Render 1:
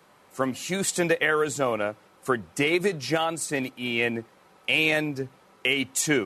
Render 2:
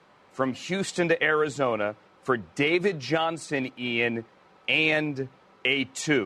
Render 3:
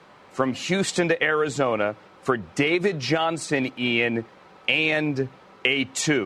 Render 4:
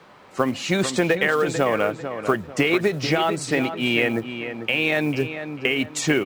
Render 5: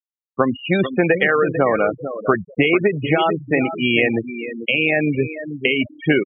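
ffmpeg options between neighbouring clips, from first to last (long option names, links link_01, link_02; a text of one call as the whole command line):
ffmpeg -i in.wav -af "lowpass=4700" out.wav
ffmpeg -i in.wav -af "acompressor=threshold=-25dB:ratio=4,volume=7dB" out.wav
ffmpeg -i in.wav -filter_complex "[0:a]acrossover=split=2400[link_01][link_02];[link_02]alimiter=limit=-18.5dB:level=0:latency=1:release=350[link_03];[link_01][link_03]amix=inputs=2:normalize=0,acrusher=bits=7:mode=log:mix=0:aa=0.000001,asplit=2[link_04][link_05];[link_05]adelay=445,lowpass=frequency=2700:poles=1,volume=-9dB,asplit=2[link_06][link_07];[link_07]adelay=445,lowpass=frequency=2700:poles=1,volume=0.34,asplit=2[link_08][link_09];[link_09]adelay=445,lowpass=frequency=2700:poles=1,volume=0.34,asplit=2[link_10][link_11];[link_11]adelay=445,lowpass=frequency=2700:poles=1,volume=0.34[link_12];[link_04][link_06][link_08][link_10][link_12]amix=inputs=5:normalize=0,volume=1.5dB" out.wav
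ffmpeg -i in.wav -af "acrusher=bits=4:mode=log:mix=0:aa=0.000001,aresample=8000,aresample=44100,afftfilt=real='re*gte(hypot(re,im),0.1)':imag='im*gte(hypot(re,im),0.1)':win_size=1024:overlap=0.75,volume=4dB" out.wav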